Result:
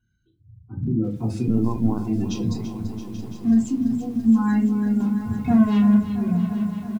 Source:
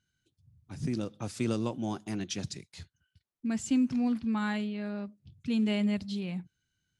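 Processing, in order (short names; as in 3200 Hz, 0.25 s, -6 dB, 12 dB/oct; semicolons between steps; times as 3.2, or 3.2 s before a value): spectral gate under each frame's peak -20 dB strong; tilt -2 dB/oct; 5–5.94 sample leveller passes 3; compressor 16:1, threshold -24 dBFS, peak gain reduction 6 dB; notch comb 600 Hz; 2.72–3.53 backlash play -39 dBFS; echo 0.832 s -14 dB; reverb RT60 0.30 s, pre-delay 3 ms, DRR -6 dB; 1.48–1.99 LPC vocoder at 8 kHz pitch kept; lo-fi delay 0.336 s, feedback 80%, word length 8-bit, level -11.5 dB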